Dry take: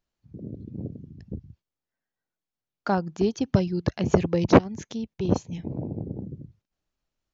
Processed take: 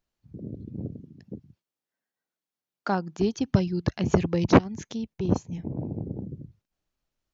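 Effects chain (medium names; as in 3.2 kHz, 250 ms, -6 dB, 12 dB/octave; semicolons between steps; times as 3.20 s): dynamic bell 540 Hz, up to -4 dB, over -38 dBFS, Q 1.5; 1.00–3.20 s: high-pass 170 Hz 12 dB/octave; 5.11–5.77 s: peaking EQ 3.5 kHz -3 dB -> -11 dB 1.4 oct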